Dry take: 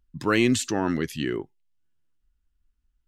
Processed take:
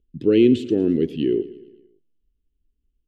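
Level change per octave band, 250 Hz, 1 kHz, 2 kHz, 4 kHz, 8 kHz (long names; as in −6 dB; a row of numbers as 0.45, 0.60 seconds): +6.5 dB, below −20 dB, −10.5 dB, −3.5 dB, below −20 dB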